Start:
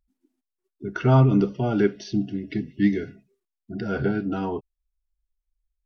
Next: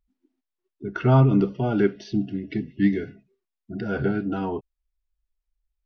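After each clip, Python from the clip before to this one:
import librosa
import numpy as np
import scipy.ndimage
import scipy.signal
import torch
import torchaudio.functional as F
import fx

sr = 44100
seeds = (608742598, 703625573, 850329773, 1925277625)

y = scipy.signal.sosfilt(scipy.signal.butter(2, 4300.0, 'lowpass', fs=sr, output='sos'), x)
y = fx.wow_flutter(y, sr, seeds[0], rate_hz=2.1, depth_cents=24.0)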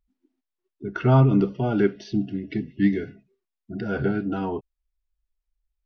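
y = x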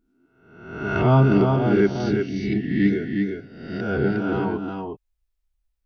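y = fx.spec_swells(x, sr, rise_s=0.86)
y = y + 10.0 ** (-4.5 / 20.0) * np.pad(y, (int(359 * sr / 1000.0), 0))[:len(y)]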